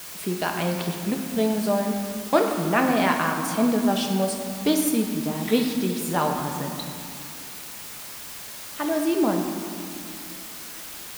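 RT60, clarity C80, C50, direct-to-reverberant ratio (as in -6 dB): 2.3 s, 5.5 dB, 4.5 dB, 2.0 dB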